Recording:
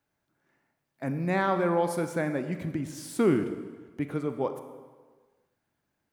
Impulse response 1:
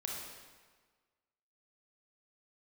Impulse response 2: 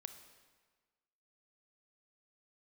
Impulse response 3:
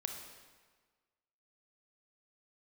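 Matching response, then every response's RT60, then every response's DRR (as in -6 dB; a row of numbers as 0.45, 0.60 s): 2; 1.5, 1.5, 1.5 s; -2.0, 8.0, 3.5 dB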